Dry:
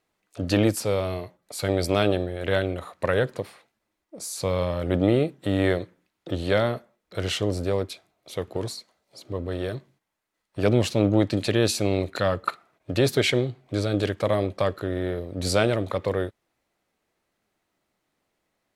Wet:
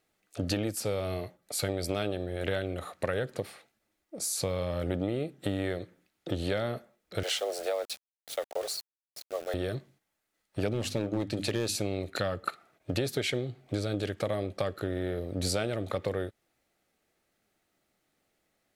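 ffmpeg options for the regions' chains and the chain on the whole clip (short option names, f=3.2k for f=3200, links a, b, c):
-filter_complex "[0:a]asettb=1/sr,asplit=3[a][b][c];[a]atrim=end=7.234[d];[b]atrim=start=7.23:end=9.54,asetpts=PTS-STARTPTS,afade=t=in:d=0.004:c=qsin,afade=t=out:st=2.306:d=0.004:c=qsin,highpass=f=370:w=0.5412,highpass=f=370:w=1.3066,afreqshift=76,aeval=exprs='val(0)*gte(abs(val(0)),0.00841)':c=same[e];[c]atrim=start=9.536[f];[d][e]acrossfade=d=0.004:c1=hsin:c2=qsin[g];[g][f]acrossfade=d=0.004:c1=qsin:c2=hsin,asettb=1/sr,asplit=3[h][i][j];[h]atrim=end=10.734[k];[i]atrim=start=10.73:end=11.76,asetpts=PTS-STARTPTS,afade=t=in:d=0.004:c=qsin,afade=t=out:st=1.026:d=0.004:c=qsin,bandreject=f=50:t=h:w=6,bandreject=f=100:t=h:w=6,bandreject=f=150:t=h:w=6,bandreject=f=200:t=h:w=6,bandreject=f=250:t=h:w=6,bandreject=f=300:t=h:w=6,asoftclip=type=hard:threshold=-13.5dB[l];[j]atrim=start=11.756[m];[k][l]acrossfade=d=0.004:c1=hsin:c2=qsin[n];[n][m]acrossfade=d=0.004:c1=qsin:c2=hsin,highshelf=f=6.7k:g=4.5,bandreject=f=1k:w=5.7,acompressor=threshold=-27dB:ratio=6"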